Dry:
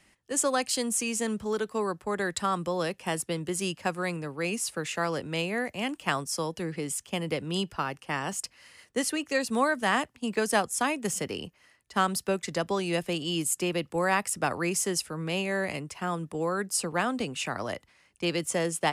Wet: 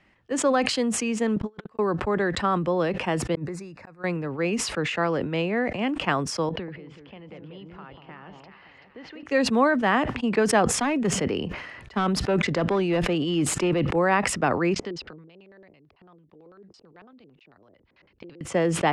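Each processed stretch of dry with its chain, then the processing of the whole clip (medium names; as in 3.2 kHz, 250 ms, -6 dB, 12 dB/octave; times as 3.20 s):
1.36–1.79 s: compressor with a negative ratio -35 dBFS, ratio -0.5 + gate -34 dBFS, range -57 dB
3.35–4.04 s: Butterworth band-stop 3.1 kHz, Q 2.8 + compression 10:1, threshold -41 dBFS + inverted gate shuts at -33 dBFS, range -39 dB
6.49–9.23 s: low-pass 4.2 kHz 24 dB/octave + compression 3:1, threshold -49 dBFS + echo whose repeats swap between lows and highs 191 ms, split 880 Hz, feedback 62%, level -4 dB
10.74–13.96 s: overload inside the chain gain 23.5 dB + decay stretcher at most 29 dB/s
14.74–18.41 s: inverted gate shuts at -31 dBFS, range -27 dB + LFO low-pass square 9 Hz 390–4300 Hz
whole clip: low-pass 2.6 kHz 12 dB/octave; dynamic bell 310 Hz, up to +4 dB, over -37 dBFS, Q 0.73; decay stretcher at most 50 dB/s; trim +3 dB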